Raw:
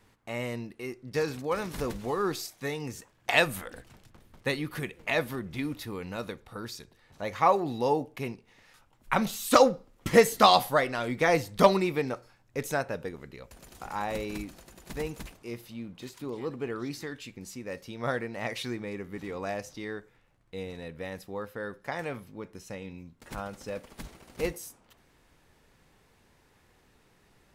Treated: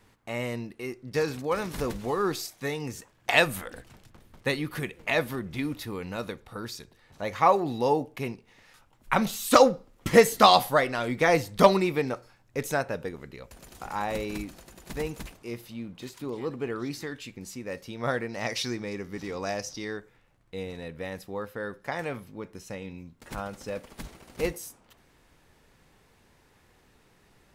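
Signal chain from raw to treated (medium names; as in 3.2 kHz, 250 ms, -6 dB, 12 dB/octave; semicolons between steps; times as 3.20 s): 18.29–19.97 s: peaking EQ 5.4 kHz +11.5 dB 0.59 oct; trim +2 dB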